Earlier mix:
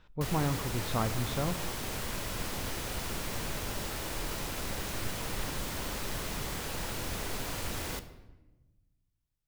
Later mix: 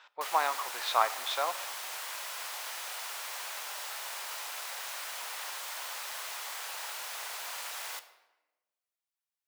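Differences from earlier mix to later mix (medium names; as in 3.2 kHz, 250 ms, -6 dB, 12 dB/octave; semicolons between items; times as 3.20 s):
speech +10.0 dB; master: add high-pass 730 Hz 24 dB/octave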